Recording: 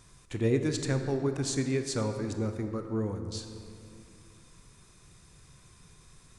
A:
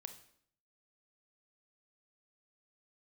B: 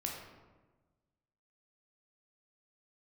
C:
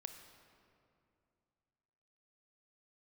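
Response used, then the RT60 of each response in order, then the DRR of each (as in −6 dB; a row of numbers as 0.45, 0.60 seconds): C; 0.65, 1.3, 2.5 seconds; 7.5, −1.0, 6.5 decibels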